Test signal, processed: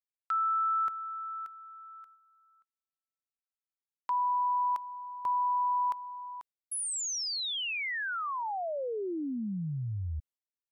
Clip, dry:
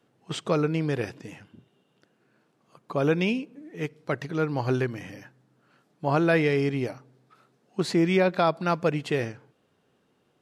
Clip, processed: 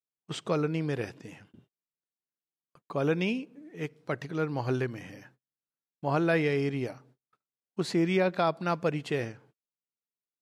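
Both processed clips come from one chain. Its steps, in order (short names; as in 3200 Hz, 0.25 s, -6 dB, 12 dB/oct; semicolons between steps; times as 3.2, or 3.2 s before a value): gate -54 dBFS, range -38 dB; gain -4 dB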